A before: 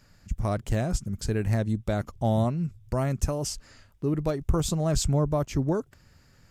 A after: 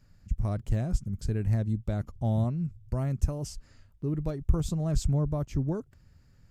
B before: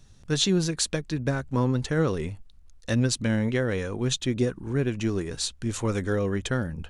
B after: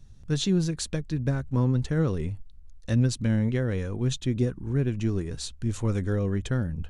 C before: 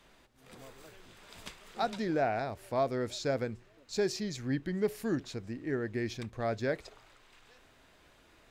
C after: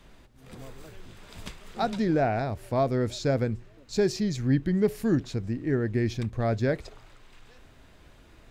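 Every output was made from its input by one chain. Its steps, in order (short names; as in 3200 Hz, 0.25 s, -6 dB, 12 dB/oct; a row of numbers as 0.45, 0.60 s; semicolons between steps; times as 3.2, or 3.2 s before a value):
low shelf 240 Hz +12 dB; normalise peaks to -12 dBFS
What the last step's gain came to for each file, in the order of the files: -10.0, -6.5, +2.5 dB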